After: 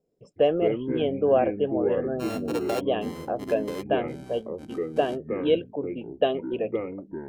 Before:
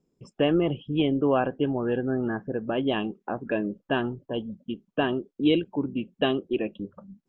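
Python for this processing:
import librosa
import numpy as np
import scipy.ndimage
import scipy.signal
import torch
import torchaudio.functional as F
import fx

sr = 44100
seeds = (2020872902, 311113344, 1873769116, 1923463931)

y = fx.sample_sort(x, sr, block=32, at=(2.19, 2.79), fade=0.02)
y = fx.band_shelf(y, sr, hz=560.0, db=12.5, octaves=1.0)
y = fx.echo_pitch(y, sr, ms=83, semitones=-5, count=2, db_per_echo=-6.0)
y = fx.dynamic_eq(y, sr, hz=3200.0, q=0.96, threshold_db=-37.0, ratio=4.0, max_db=3)
y = y * 10.0 ** (-7.5 / 20.0)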